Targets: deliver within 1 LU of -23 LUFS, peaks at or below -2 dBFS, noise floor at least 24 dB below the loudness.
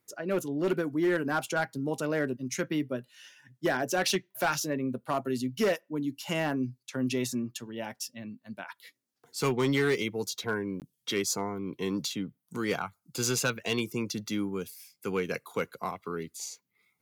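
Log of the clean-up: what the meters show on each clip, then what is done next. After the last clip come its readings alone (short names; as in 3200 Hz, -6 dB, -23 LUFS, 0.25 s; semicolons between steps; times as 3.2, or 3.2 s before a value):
clipped 0.5%; flat tops at -20.5 dBFS; dropouts 1; longest dropout 18 ms; loudness -31.5 LUFS; peak -20.5 dBFS; loudness target -23.0 LUFS
-> clip repair -20.5 dBFS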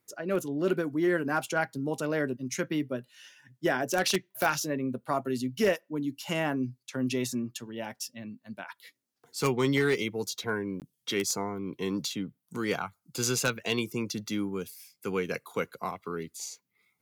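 clipped 0.0%; dropouts 1; longest dropout 18 ms
-> interpolate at 10.8, 18 ms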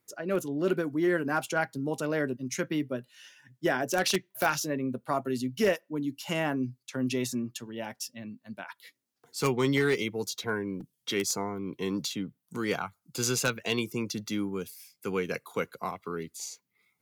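dropouts 0; loudness -31.0 LUFS; peak -11.5 dBFS; loudness target -23.0 LUFS
-> gain +8 dB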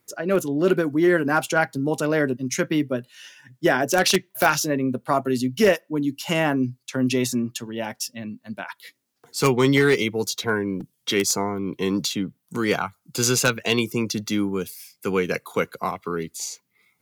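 loudness -23.0 LUFS; peak -3.5 dBFS; noise floor -72 dBFS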